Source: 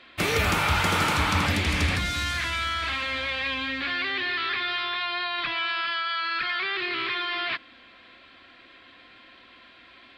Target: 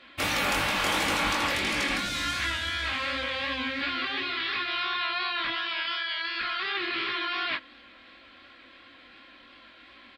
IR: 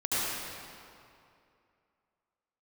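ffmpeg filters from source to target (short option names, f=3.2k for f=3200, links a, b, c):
-af "afftfilt=real='re*lt(hypot(re,im),0.224)':imag='im*lt(hypot(re,im),0.224)':win_size=1024:overlap=0.75,flanger=delay=17.5:depth=6.9:speed=2.8,aecho=1:1:3.6:0.34,volume=2dB"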